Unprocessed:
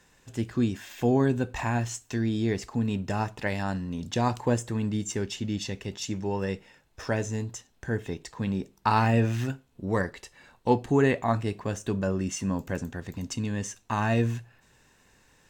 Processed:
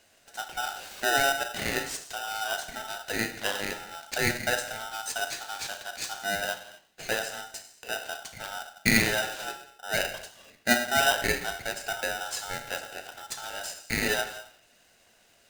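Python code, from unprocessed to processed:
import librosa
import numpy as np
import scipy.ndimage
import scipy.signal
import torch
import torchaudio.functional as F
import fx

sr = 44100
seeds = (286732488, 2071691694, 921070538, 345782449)

y = scipy.signal.sosfilt(scipy.signal.butter(4, 320.0, 'highpass', fs=sr, output='sos'), x)
y = fx.rev_gated(y, sr, seeds[0], gate_ms=280, shape='falling', drr_db=5.0)
y = fx.vibrato(y, sr, rate_hz=12.0, depth_cents=9.2)
y = y * np.sign(np.sin(2.0 * np.pi * 1100.0 * np.arange(len(y)) / sr))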